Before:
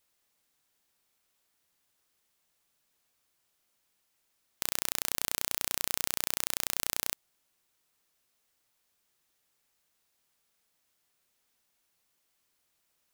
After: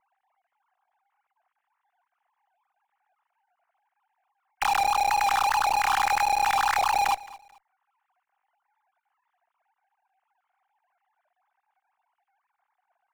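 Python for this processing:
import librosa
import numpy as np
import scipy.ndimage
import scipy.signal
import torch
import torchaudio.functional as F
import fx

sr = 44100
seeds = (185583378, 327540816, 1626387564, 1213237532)

p1 = fx.sine_speech(x, sr)
p2 = scipy.signal.sosfilt(scipy.signal.butter(2, 1100.0, 'lowpass', fs=sr, output='sos'), p1)
p3 = fx.tilt_eq(p2, sr, slope=-1.5)
p4 = fx.fuzz(p3, sr, gain_db=58.0, gate_db=-56.0)
p5 = p3 + F.gain(torch.from_numpy(p4), -10.0).numpy()
y = fx.echo_feedback(p5, sr, ms=218, feedback_pct=27, wet_db=-20.0)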